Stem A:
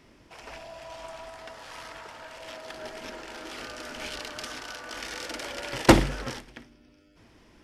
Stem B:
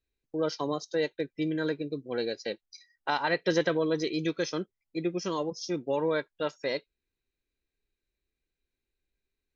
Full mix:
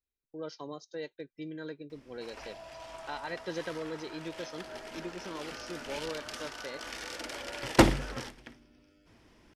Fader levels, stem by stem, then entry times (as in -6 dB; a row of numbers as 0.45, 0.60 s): -4.0, -11.0 dB; 1.90, 0.00 s